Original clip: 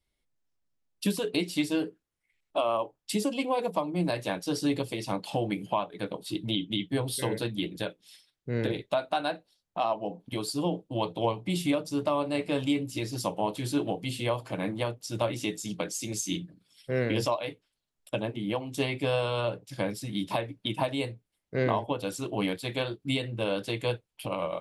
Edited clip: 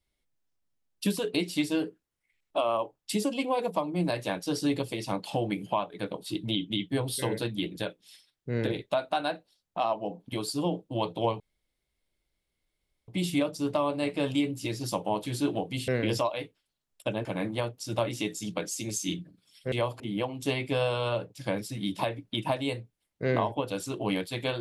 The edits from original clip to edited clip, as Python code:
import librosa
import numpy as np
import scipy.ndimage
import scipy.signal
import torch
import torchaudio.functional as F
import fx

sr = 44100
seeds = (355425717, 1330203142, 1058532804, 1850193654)

y = fx.edit(x, sr, fx.insert_room_tone(at_s=11.4, length_s=1.68),
    fx.swap(start_s=14.2, length_s=0.28, other_s=16.95, other_length_s=1.37), tone=tone)